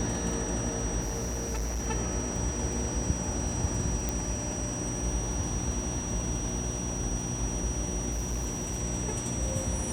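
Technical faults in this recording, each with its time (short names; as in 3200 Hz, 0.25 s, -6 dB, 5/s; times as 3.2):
crackle 49/s -39 dBFS
hum 60 Hz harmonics 6 -36 dBFS
tone 5800 Hz -36 dBFS
1–1.87 clipped -28.5 dBFS
4.09 pop -15 dBFS
8.11–8.81 clipped -27.5 dBFS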